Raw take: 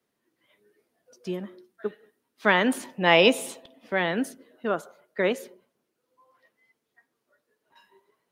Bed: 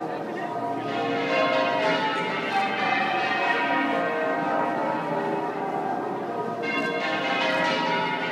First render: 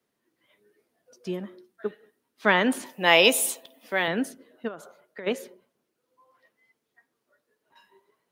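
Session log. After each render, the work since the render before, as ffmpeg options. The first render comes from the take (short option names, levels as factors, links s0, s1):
-filter_complex "[0:a]asettb=1/sr,asplit=3[s0][s1][s2];[s0]atrim=end=2.864[s3];[s1]atrim=start=2.86:end=4.08,asetpts=PTS-STARTPTS,afade=t=in:d=0.004:c=qsin,afade=t=out:st=1.216:d=0.004:c=qsin,aemphasis=mode=production:type=bsi[s4];[s2]atrim=start=4.076[s5];[s3][s4]acrossfade=d=0.004:c1=hsin:c2=qsin[s6];[s6][s5]acrossfade=d=0.004:c1=qsin:c2=hsin,asplit=3[s7][s8][s9];[s7]afade=t=out:st=4.67:d=0.02[s10];[s8]acompressor=threshold=0.02:ratio=16:attack=3.2:release=140:knee=1:detection=peak,afade=t=in:st=4.67:d=0.02,afade=t=out:st=5.26:d=0.02[s11];[s9]afade=t=in:st=5.26:d=0.02[s12];[s10][s11][s12]amix=inputs=3:normalize=0"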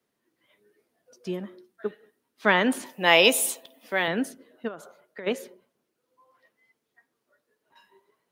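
-af anull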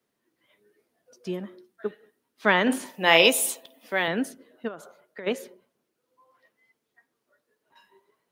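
-filter_complex "[0:a]asettb=1/sr,asplit=3[s0][s1][s2];[s0]atrim=end=2.624[s3];[s1]atrim=start=2.62:end=3.27,asetpts=PTS-STARTPTS,afade=t=in:d=0.004:c=qsin,afade=t=out:st=0.646:d=0.004:c=qsin,asplit=2[s4][s5];[s5]adelay=48,volume=0.355[s6];[s4][s6]amix=inputs=2:normalize=0,atrim=end_sample=28665[s7];[s2]atrim=start=3.266[s8];[s3][s7]acrossfade=d=0.004:c1=hsin:c2=qsin[s9];[s9][s8]acrossfade=d=0.004:c1=qsin:c2=hsin"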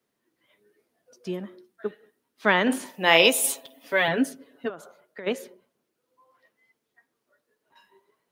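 -filter_complex "[0:a]asettb=1/sr,asplit=3[s0][s1][s2];[s0]atrim=end=3.434[s3];[s1]atrim=start=3.43:end=4.7,asetpts=PTS-STARTPTS,afade=t=in:d=0.004:c=qsin,afade=t=out:st=1.266:d=0.004:c=qsin,aecho=1:1:7.2:0.95,atrim=end_sample=56007[s4];[s2]atrim=start=4.696[s5];[s3][s4]acrossfade=d=0.004:c1=hsin:c2=qsin[s6];[s6][s5]acrossfade=d=0.004:c1=qsin:c2=hsin"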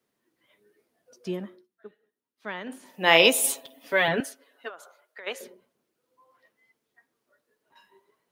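-filter_complex "[0:a]asettb=1/sr,asplit=3[s0][s1][s2];[s0]atrim=end=4.204[s3];[s1]atrim=start=4.2:end=5.41,asetpts=PTS-STARTPTS,afade=t=in:d=0.004:c=qsin,afade=t=out:st=1.206:d=0.004:c=qsin,highpass=740[s4];[s2]atrim=start=5.406[s5];[s3][s4]acrossfade=d=0.004:c1=hsin:c2=qsin[s6];[s6][s5]acrossfade=d=0.004:c1=qsin:c2=hsin,asplit=3[s7][s8][s9];[s7]atrim=end=1.68,asetpts=PTS-STARTPTS,afade=t=out:st=1.42:d=0.26:silence=0.177828[s10];[s8]atrim=start=1.68:end=2.82,asetpts=PTS-STARTPTS,volume=0.178[s11];[s9]atrim=start=2.82,asetpts=PTS-STARTPTS,afade=t=in:d=0.26:silence=0.177828[s12];[s10][s11][s12]concat=n=3:v=0:a=1"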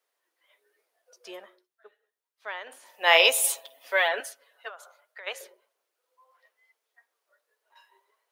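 -af "highpass=f=530:w=0.5412,highpass=f=530:w=1.3066"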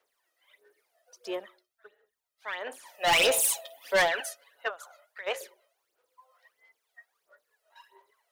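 -af "aphaser=in_gain=1:out_gain=1:delay=1.6:decay=0.67:speed=1.5:type=sinusoidal,asoftclip=type=tanh:threshold=0.112"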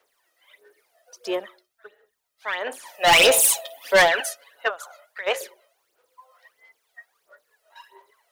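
-af "volume=2.51"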